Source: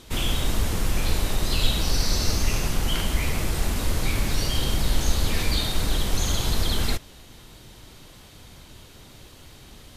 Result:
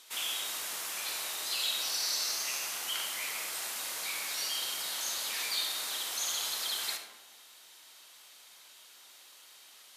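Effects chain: high-pass 930 Hz 12 dB/octave; treble shelf 4.3 kHz +6.5 dB; on a send: reverberation RT60 1.2 s, pre-delay 20 ms, DRR 6 dB; on the sum: trim -7.5 dB

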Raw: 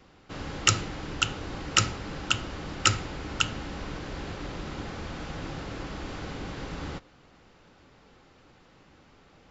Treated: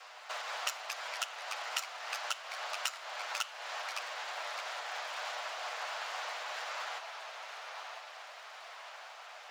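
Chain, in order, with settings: comb filter that takes the minimum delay 8.2 ms; compression 12:1, threshold -43 dBFS, peak gain reduction 27 dB; ever faster or slower copies 145 ms, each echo -2 st, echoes 3, each echo -6 dB; elliptic high-pass 640 Hz, stop band 80 dB; trim +11 dB

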